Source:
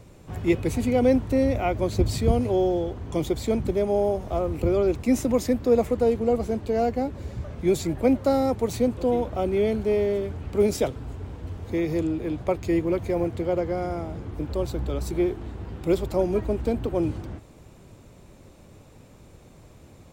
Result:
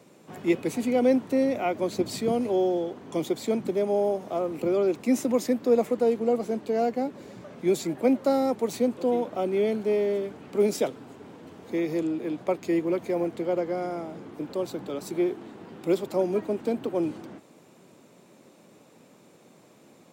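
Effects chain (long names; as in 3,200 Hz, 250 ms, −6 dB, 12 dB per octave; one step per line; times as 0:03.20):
high-pass filter 180 Hz 24 dB per octave
level −1.5 dB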